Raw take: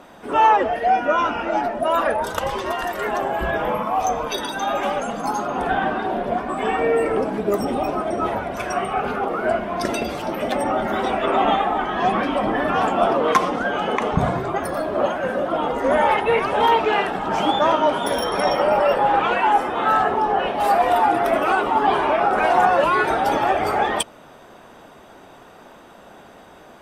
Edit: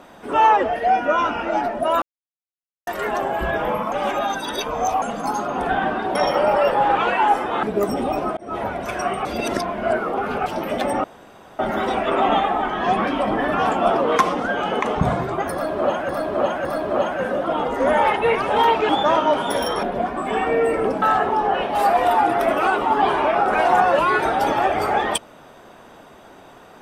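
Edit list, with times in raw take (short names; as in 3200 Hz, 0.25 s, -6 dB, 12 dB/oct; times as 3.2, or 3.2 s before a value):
2.02–2.87 mute
3.92–5.02 reverse
6.15–7.34 swap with 18.39–19.87
8.08–8.38 fade in linear
8.96–10.17 reverse
10.75 insert room tone 0.55 s
14.69–15.25 loop, 3 plays
16.93–17.45 cut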